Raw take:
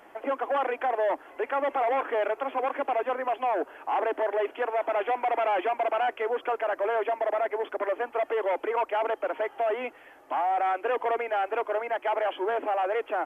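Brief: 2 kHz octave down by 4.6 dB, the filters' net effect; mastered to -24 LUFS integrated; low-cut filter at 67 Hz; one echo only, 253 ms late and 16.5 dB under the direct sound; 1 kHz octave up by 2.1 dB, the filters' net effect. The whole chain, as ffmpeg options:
-af "highpass=67,equalizer=f=1000:t=o:g=4.5,equalizer=f=2000:t=o:g=-8,aecho=1:1:253:0.15,volume=1.41"

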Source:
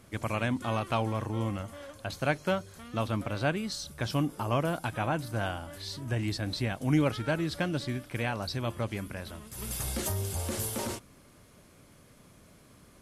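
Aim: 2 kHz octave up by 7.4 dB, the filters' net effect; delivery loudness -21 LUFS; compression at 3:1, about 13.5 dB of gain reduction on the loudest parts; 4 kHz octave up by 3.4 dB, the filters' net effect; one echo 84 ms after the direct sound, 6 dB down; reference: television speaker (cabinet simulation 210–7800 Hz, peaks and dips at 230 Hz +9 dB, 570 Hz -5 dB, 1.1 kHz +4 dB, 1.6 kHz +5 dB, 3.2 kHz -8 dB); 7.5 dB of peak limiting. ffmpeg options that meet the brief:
-af "equalizer=f=2000:t=o:g=4.5,equalizer=f=4000:t=o:g=6,acompressor=threshold=0.0112:ratio=3,alimiter=level_in=1.78:limit=0.0631:level=0:latency=1,volume=0.562,highpass=f=210:w=0.5412,highpass=f=210:w=1.3066,equalizer=f=230:t=q:w=4:g=9,equalizer=f=570:t=q:w=4:g=-5,equalizer=f=1100:t=q:w=4:g=4,equalizer=f=1600:t=q:w=4:g=5,equalizer=f=3200:t=q:w=4:g=-8,lowpass=f=7800:w=0.5412,lowpass=f=7800:w=1.3066,aecho=1:1:84:0.501,volume=9.44"

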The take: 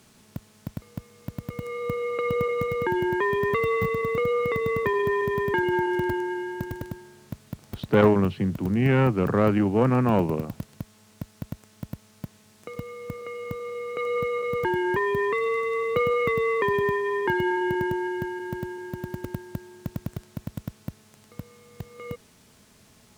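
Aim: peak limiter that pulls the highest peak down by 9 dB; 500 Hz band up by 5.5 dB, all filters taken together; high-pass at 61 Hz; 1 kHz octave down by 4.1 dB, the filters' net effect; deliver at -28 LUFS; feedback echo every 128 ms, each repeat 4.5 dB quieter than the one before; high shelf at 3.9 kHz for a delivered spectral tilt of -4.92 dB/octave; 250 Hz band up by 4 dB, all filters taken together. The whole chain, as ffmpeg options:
-af "highpass=61,equalizer=f=250:t=o:g=3.5,equalizer=f=500:t=o:g=6.5,equalizer=f=1000:t=o:g=-6,highshelf=f=3900:g=-4.5,alimiter=limit=0.266:level=0:latency=1,aecho=1:1:128|256|384|512|640|768|896|1024|1152:0.596|0.357|0.214|0.129|0.0772|0.0463|0.0278|0.0167|0.01,volume=0.398"

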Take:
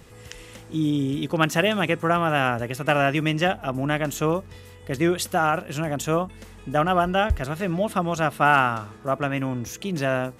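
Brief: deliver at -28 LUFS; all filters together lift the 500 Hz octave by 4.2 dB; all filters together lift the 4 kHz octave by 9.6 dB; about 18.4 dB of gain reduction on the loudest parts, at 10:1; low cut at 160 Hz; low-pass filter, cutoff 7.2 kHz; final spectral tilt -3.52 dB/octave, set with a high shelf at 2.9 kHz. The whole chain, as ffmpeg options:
-af "highpass=160,lowpass=7200,equalizer=f=500:t=o:g=5,highshelf=f=2900:g=8,equalizer=f=4000:t=o:g=8,acompressor=threshold=0.0316:ratio=10,volume=2.11"

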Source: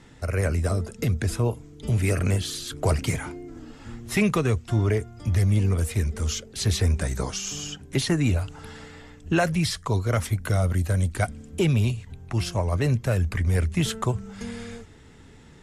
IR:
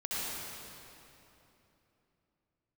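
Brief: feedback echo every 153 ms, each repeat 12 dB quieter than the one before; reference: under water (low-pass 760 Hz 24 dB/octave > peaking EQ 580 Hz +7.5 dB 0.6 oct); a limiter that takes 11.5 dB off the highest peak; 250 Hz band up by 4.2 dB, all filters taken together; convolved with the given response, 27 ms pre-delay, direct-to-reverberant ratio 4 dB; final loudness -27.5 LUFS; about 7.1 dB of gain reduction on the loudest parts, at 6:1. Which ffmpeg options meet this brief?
-filter_complex "[0:a]equalizer=f=250:t=o:g=5.5,acompressor=threshold=0.0708:ratio=6,alimiter=level_in=1.12:limit=0.0631:level=0:latency=1,volume=0.891,aecho=1:1:153|306|459:0.251|0.0628|0.0157,asplit=2[s0][s1];[1:a]atrim=start_sample=2205,adelay=27[s2];[s1][s2]afir=irnorm=-1:irlink=0,volume=0.316[s3];[s0][s3]amix=inputs=2:normalize=0,lowpass=f=760:w=0.5412,lowpass=f=760:w=1.3066,equalizer=f=580:t=o:w=0.6:g=7.5,volume=1.78"

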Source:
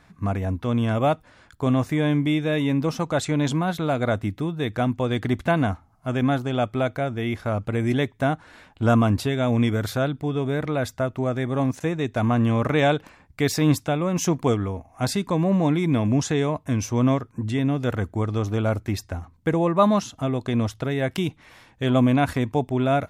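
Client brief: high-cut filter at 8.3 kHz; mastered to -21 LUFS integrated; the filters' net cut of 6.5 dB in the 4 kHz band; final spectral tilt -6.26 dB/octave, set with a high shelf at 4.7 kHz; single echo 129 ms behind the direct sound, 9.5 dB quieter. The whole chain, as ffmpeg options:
-af "lowpass=8300,equalizer=f=4000:t=o:g=-4,highshelf=f=4700:g=-8.5,aecho=1:1:129:0.335,volume=1.33"

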